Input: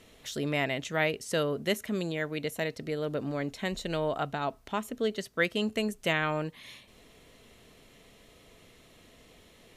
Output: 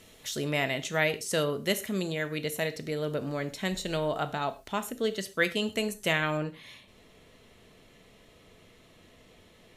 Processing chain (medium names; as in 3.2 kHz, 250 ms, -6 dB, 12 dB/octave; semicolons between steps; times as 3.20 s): treble shelf 4.8 kHz +7 dB, from 6.37 s -5 dB; gated-style reverb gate 150 ms falling, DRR 9.5 dB